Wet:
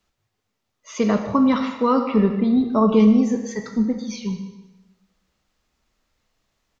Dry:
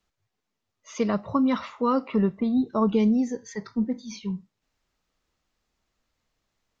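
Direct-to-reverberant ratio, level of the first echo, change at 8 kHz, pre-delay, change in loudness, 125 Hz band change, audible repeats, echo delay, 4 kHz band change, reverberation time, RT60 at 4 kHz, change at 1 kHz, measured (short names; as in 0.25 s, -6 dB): 4.5 dB, -17.0 dB, n/a, 4 ms, +6.0 dB, +6.0 dB, 1, 0.151 s, +6.0 dB, 1.1 s, 1.0 s, +5.5 dB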